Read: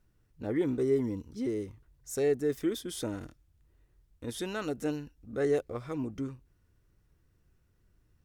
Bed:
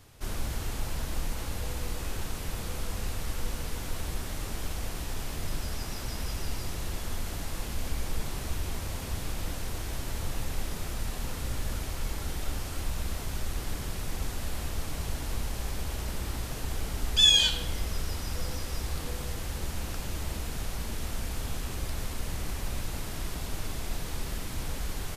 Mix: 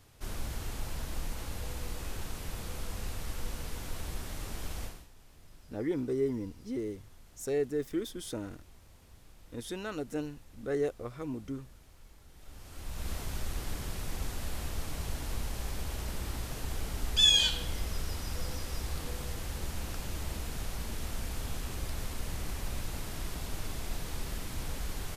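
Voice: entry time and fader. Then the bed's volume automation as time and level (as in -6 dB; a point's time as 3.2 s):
5.30 s, -3.0 dB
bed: 4.84 s -4.5 dB
5.1 s -23 dB
12.29 s -23 dB
13.1 s -3 dB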